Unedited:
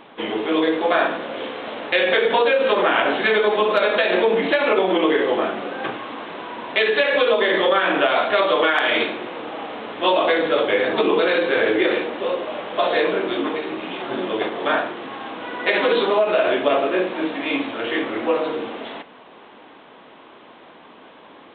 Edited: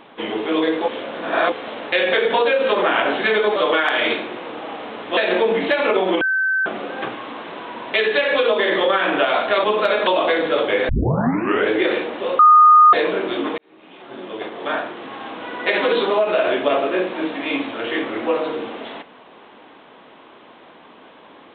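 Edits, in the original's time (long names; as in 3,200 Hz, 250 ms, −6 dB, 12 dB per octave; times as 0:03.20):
0:00.88–0:01.52: reverse
0:03.56–0:03.99: swap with 0:08.46–0:10.07
0:05.03–0:05.48: beep over 1,540 Hz −16 dBFS
0:10.89: tape start 0.81 s
0:12.39–0:12.93: beep over 1,230 Hz −6 dBFS
0:13.58–0:15.25: fade in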